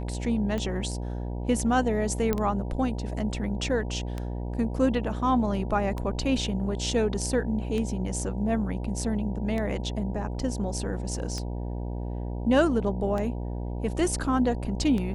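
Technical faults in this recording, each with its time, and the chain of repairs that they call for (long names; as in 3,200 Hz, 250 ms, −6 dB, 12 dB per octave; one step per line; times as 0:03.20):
mains buzz 60 Hz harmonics 16 −32 dBFS
scratch tick 33 1/3 rpm −19 dBFS
0:02.33: click −12 dBFS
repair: click removal
hum removal 60 Hz, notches 16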